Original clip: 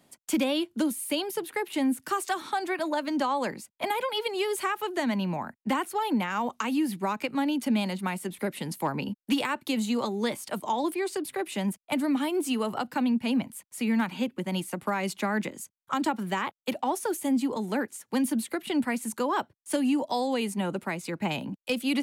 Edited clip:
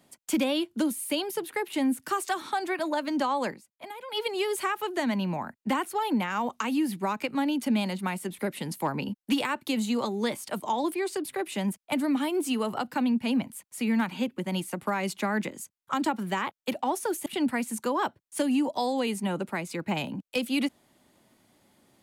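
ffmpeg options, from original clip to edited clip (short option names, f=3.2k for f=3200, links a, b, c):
-filter_complex "[0:a]asplit=4[a][b][c][d];[a]atrim=end=3.6,asetpts=PTS-STARTPTS,afade=t=out:st=3.48:d=0.12:silence=0.237137[e];[b]atrim=start=3.6:end=4.06,asetpts=PTS-STARTPTS,volume=-12.5dB[f];[c]atrim=start=4.06:end=17.262,asetpts=PTS-STARTPTS,afade=t=in:d=0.12:silence=0.237137[g];[d]atrim=start=18.598[h];[e][f][g]concat=n=3:v=0:a=1[i];[i][h]acrossfade=d=0.004:c1=hsin:c2=hsin"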